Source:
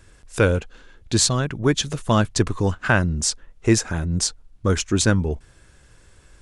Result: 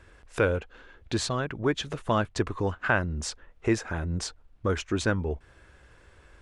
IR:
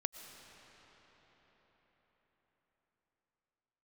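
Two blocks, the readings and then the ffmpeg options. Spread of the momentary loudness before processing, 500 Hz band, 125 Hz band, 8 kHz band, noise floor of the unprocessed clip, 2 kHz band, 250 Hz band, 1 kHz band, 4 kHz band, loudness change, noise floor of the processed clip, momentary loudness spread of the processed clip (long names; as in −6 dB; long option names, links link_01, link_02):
7 LU, −5.0 dB, −9.5 dB, −15.0 dB, −53 dBFS, −4.5 dB, −8.0 dB, −4.0 dB, −10.5 dB, −8.0 dB, −57 dBFS, 8 LU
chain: -filter_complex "[0:a]bass=frequency=250:gain=-10,treble=frequency=4000:gain=-14,asplit=2[link_01][link_02];[link_02]acompressor=threshold=-34dB:ratio=6,volume=2dB[link_03];[link_01][link_03]amix=inputs=2:normalize=0,equalizer=frequency=64:width=1:gain=7.5,volume=-6dB"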